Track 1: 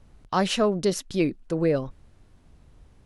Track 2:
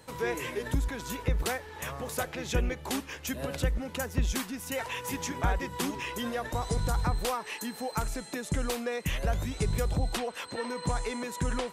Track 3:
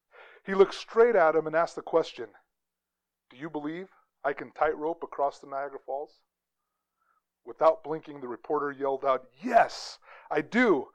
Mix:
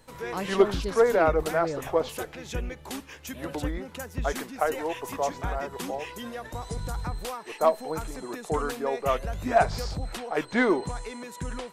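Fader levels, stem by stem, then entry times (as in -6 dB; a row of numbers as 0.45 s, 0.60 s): -10.0 dB, -4.0 dB, 0.0 dB; 0.00 s, 0.00 s, 0.00 s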